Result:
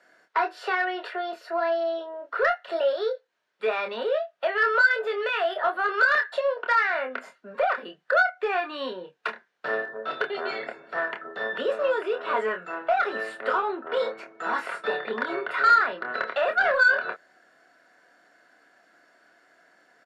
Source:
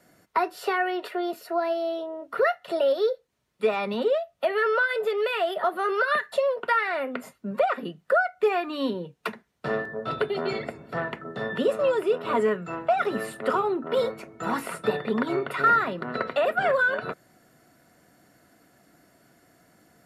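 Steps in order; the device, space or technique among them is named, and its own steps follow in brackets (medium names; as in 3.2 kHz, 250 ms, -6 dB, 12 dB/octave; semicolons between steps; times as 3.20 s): intercom (band-pass 500–4800 Hz; peaking EQ 1.6 kHz +10.5 dB 0.22 oct; saturation -13 dBFS, distortion -19 dB; doubling 27 ms -6 dB)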